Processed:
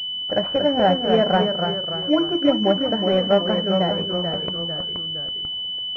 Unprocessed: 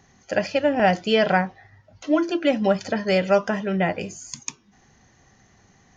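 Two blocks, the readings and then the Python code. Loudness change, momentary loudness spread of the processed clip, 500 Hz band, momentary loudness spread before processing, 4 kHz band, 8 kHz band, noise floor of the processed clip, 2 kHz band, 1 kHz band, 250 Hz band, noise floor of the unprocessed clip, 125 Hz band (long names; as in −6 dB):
+1.5 dB, 7 LU, +2.0 dB, 14 LU, +14.0 dB, can't be measured, −28 dBFS, −6.0 dB, +1.5 dB, +2.5 dB, −59 dBFS, +3.0 dB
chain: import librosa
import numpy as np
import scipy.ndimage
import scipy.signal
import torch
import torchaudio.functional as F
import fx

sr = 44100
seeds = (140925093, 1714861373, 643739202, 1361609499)

y = fx.quant_dither(x, sr, seeds[0], bits=10, dither='none')
y = fx.echo_pitch(y, sr, ms=209, semitones=-1, count=3, db_per_echo=-6.0)
y = fx.pwm(y, sr, carrier_hz=3000.0)
y = y * 10.0 ** (1.0 / 20.0)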